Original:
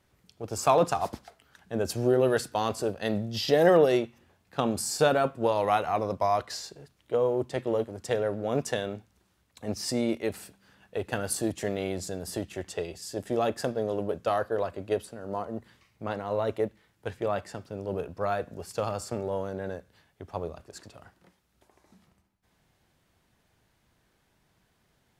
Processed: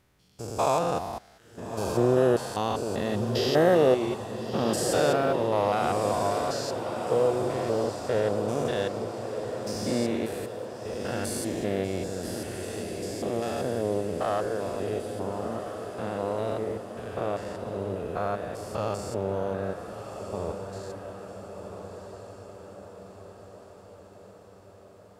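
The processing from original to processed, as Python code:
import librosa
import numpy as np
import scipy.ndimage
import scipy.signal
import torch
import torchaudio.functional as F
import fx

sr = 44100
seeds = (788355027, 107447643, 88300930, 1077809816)

y = fx.spec_steps(x, sr, hold_ms=200)
y = fx.echo_diffused(y, sr, ms=1344, feedback_pct=57, wet_db=-7.5)
y = F.gain(torch.from_numpy(y), 3.0).numpy()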